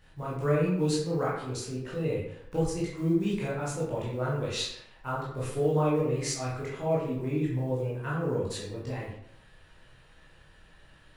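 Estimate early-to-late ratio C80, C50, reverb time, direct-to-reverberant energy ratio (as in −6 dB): 5.5 dB, 2.0 dB, 0.75 s, −7.5 dB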